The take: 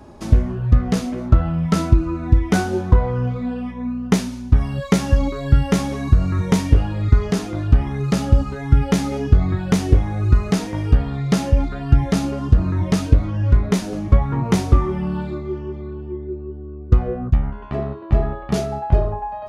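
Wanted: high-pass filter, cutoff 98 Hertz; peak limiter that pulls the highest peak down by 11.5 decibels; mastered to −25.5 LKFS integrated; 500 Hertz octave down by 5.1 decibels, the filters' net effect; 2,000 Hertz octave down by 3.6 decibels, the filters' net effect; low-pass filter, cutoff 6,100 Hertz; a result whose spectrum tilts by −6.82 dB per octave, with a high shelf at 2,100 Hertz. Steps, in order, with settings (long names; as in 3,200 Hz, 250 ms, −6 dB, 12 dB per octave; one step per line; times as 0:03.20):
high-pass filter 98 Hz
low-pass filter 6,100 Hz
parametric band 500 Hz −7 dB
parametric band 2,000 Hz −8 dB
high-shelf EQ 2,100 Hz +6.5 dB
level +1.5 dB
brickwall limiter −14 dBFS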